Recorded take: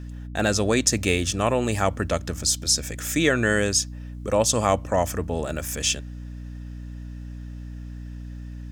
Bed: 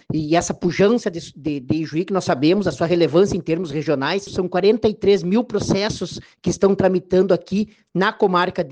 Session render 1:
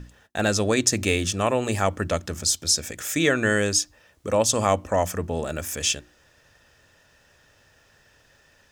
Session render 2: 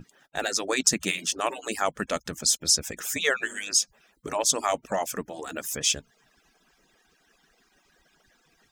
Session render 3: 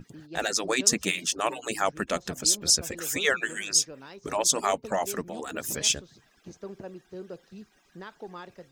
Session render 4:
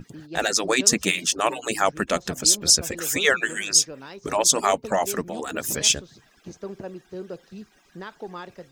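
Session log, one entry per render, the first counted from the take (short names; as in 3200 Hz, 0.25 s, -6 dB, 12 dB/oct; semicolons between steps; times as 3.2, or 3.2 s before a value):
notches 60/120/180/240/300/360 Hz
median-filter separation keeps percussive; dynamic EQ 470 Hz, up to -5 dB, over -35 dBFS, Q 0.91
add bed -25 dB
gain +5 dB; limiter -3 dBFS, peak gain reduction 1.5 dB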